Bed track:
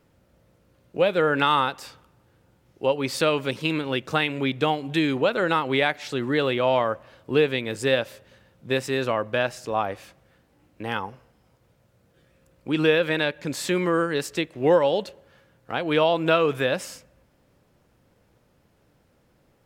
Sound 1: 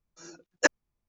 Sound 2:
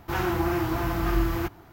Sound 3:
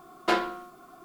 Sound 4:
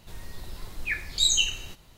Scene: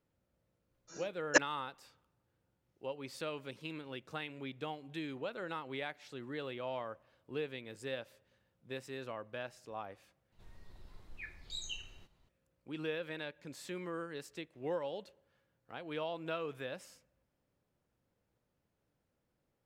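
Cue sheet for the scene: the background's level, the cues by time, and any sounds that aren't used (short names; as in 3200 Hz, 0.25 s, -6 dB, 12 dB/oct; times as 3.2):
bed track -19 dB
0.71 add 1 -4 dB
10.32 replace with 4 -15.5 dB + LPF 2500 Hz 6 dB/oct
not used: 2, 3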